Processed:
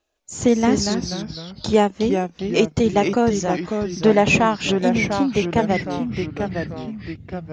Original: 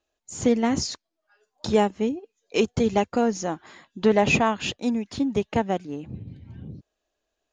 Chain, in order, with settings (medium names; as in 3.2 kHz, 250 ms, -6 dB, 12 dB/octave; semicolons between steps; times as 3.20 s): ever faster or slower copies 160 ms, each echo -2 st, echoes 3, each echo -6 dB; trim +4 dB